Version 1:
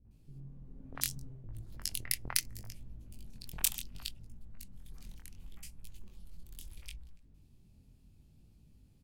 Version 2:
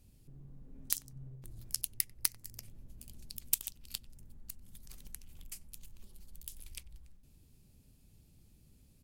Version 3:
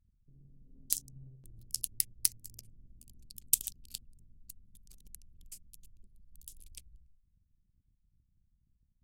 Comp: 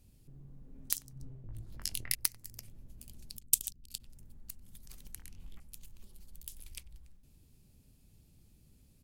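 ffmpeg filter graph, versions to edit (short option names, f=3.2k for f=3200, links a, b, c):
-filter_complex "[0:a]asplit=2[a][b];[1:a]asplit=4[c][d][e][f];[c]atrim=end=1.202[g];[a]atrim=start=1.198:end=2.152[h];[d]atrim=start=2.148:end=3.382[i];[2:a]atrim=start=3.378:end=4.002[j];[e]atrim=start=3.998:end=5.172[k];[b]atrim=start=5.168:end=5.602[l];[f]atrim=start=5.598[m];[g][h]acrossfade=d=0.004:c1=hsin:c2=hsin[n];[n][i]acrossfade=d=0.004:c1=hsin:c2=hsin[o];[o][j]acrossfade=d=0.004:c1=hsin:c2=hsin[p];[p][k]acrossfade=d=0.004:c1=hsin:c2=hsin[q];[q][l]acrossfade=d=0.004:c1=hsin:c2=hsin[r];[r][m]acrossfade=d=0.004:c1=hsin:c2=hsin"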